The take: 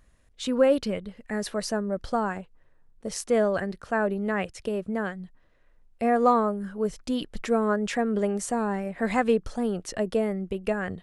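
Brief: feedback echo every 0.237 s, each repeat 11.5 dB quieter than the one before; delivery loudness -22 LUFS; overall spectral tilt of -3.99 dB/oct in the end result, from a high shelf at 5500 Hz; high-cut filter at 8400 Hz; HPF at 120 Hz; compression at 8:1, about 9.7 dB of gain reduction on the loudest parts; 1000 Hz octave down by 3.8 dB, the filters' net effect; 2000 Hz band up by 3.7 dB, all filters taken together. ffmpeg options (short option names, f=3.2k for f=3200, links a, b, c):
-af "highpass=120,lowpass=8.4k,equalizer=f=1k:t=o:g=-7.5,equalizer=f=2k:t=o:g=6.5,highshelf=f=5.5k:g=7,acompressor=threshold=-27dB:ratio=8,aecho=1:1:237|474|711:0.266|0.0718|0.0194,volume=10.5dB"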